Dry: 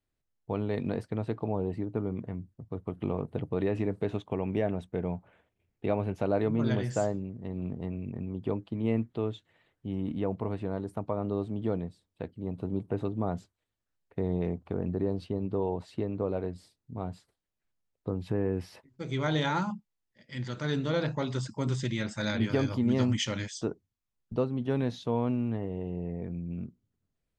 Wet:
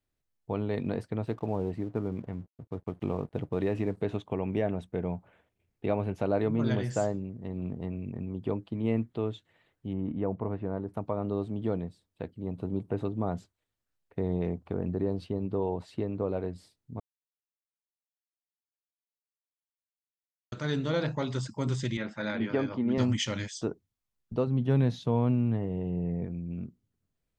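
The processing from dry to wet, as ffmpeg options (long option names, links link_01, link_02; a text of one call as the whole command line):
ffmpeg -i in.wav -filter_complex "[0:a]asettb=1/sr,asplit=3[link_01][link_02][link_03];[link_01]atrim=end=1.254[link_04];[link_02]atrim=start=1.25:end=3.97,asetpts=PTS-STARTPTS,afade=type=in:duration=0.004:curve=qsin,afade=type=out:start_time=2.716:duration=0.004:curve=qsin,aeval=exprs='sgn(val(0))*max(abs(val(0))-0.00141,0)':channel_layout=same[link_05];[link_03]atrim=start=3.966[link_06];[link_04][link_05]acrossfade=duration=0.004:curve1=hsin:curve2=qsin[link_07];[link_07][link_06]acrossfade=duration=0.004:curve1=qsin:curve2=hsin,asettb=1/sr,asplit=3[link_08][link_09][link_10];[link_08]atrim=end=9.934[link_11];[link_09]atrim=start=9.93:end=10.94,asetpts=PTS-STARTPTS,afade=type=in:duration=0.004:curve=qsin,afade=type=out:start_time=1.006:duration=0.004:curve=qsin,lowpass=1800[link_12];[link_10]atrim=start=10.936[link_13];[link_11][link_12]acrossfade=duration=0.004:curve1=hsin:curve2=qsin[link_14];[link_14][link_13]acrossfade=duration=0.004:curve1=qsin:curve2=hsin,asettb=1/sr,asplit=3[link_15][link_16][link_17];[link_15]atrim=end=21.974[link_18];[link_16]atrim=start=21.97:end=22.98,asetpts=PTS-STARTPTS,afade=type=in:duration=0.004:curve=qsin,afade=type=out:start_time=1.006:duration=0.004:curve=qsin,highpass=190,lowpass=2600[link_19];[link_17]atrim=start=22.976[link_20];[link_18][link_19]acrossfade=duration=0.004:curve1=hsin:curve2=qsin[link_21];[link_21][link_20]acrossfade=duration=0.004:curve1=qsin:curve2=hsin,asettb=1/sr,asplit=3[link_22][link_23][link_24];[link_22]atrim=end=24.474[link_25];[link_23]atrim=start=24.47:end=26.25,asetpts=PTS-STARTPTS,afade=type=in:duration=0.004:curve=qsin,afade=type=out:start_time=1.776:duration=0.004:curve=qsin,equalizer=frequency=140:width_type=o:width=0.84:gain=8.5[link_26];[link_24]atrim=start=26.246[link_27];[link_25][link_26]acrossfade=duration=0.004:curve1=hsin:curve2=qsin[link_28];[link_28][link_27]acrossfade=duration=0.004:curve1=qsin:curve2=hsin,asplit=3[link_29][link_30][link_31];[link_29]atrim=end=17,asetpts=PTS-STARTPTS,afade=type=out:start_time=16.996:duration=0.004:curve=hsin[link_32];[link_30]atrim=start=17:end=20.52,asetpts=PTS-STARTPTS,volume=0[link_33];[link_31]atrim=start=20.52,asetpts=PTS-STARTPTS,afade=type=in:duration=0.004:curve=hsin[link_34];[link_32][link_33][link_34]concat=n=3:v=0:a=1" out.wav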